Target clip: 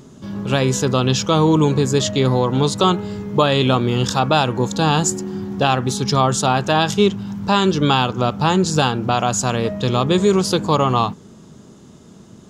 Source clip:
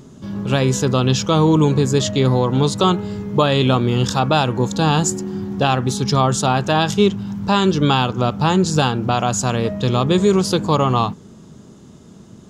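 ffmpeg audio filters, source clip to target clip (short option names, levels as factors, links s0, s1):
-af "lowshelf=f=250:g=-3.5,volume=1.12"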